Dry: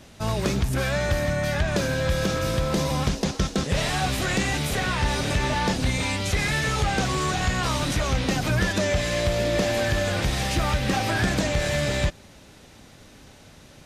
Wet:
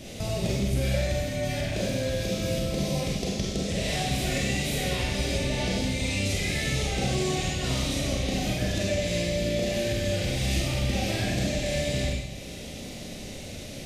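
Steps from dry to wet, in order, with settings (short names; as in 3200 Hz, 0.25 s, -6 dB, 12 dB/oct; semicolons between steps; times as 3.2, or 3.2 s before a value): band shelf 1200 Hz -12 dB 1.2 oct; compressor, threshold -36 dBFS, peak gain reduction 16.5 dB; Schroeder reverb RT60 1.1 s, combs from 31 ms, DRR -4 dB; gain +5.5 dB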